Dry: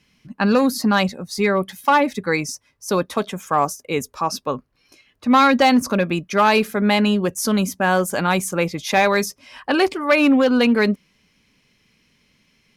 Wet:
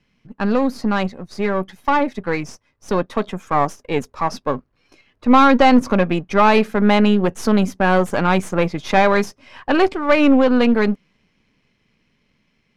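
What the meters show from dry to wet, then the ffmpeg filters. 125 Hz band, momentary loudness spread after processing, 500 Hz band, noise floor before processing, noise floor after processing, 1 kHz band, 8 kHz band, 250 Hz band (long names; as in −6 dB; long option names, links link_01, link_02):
+2.5 dB, 12 LU, +2.0 dB, −63 dBFS, −66 dBFS, +1.5 dB, −9.0 dB, +2.0 dB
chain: -af "aeval=exprs='if(lt(val(0),0),0.447*val(0),val(0))':channel_layout=same,aemphasis=mode=reproduction:type=75fm,dynaudnorm=framelen=690:gausssize=9:maxgain=11.5dB"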